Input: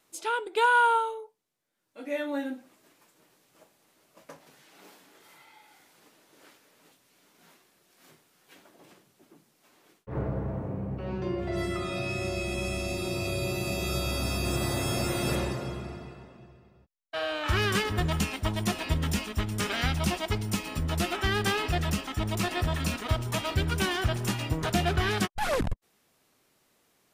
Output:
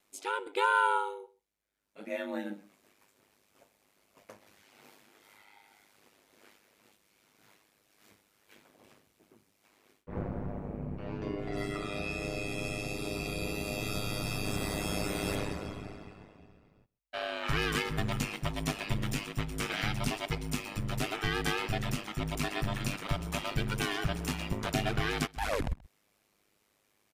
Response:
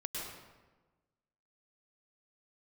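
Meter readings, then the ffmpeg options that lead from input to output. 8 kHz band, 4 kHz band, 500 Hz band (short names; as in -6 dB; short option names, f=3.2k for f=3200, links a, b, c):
-5.0 dB, -4.5 dB, -5.0 dB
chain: -af "equalizer=f=2.3k:t=o:w=0.36:g=4,aeval=exprs='val(0)*sin(2*PI*51*n/s)':c=same,aecho=1:1:130:0.0708,volume=-2dB"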